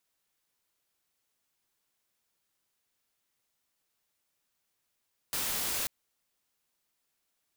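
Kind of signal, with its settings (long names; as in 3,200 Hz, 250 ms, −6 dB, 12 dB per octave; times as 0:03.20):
noise white, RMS −32.5 dBFS 0.54 s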